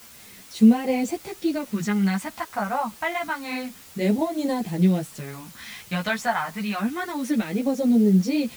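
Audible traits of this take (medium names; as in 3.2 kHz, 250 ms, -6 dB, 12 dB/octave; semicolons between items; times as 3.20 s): phasing stages 2, 0.28 Hz, lowest notch 360–1300 Hz; a quantiser's noise floor 8-bit, dither triangular; a shimmering, thickened sound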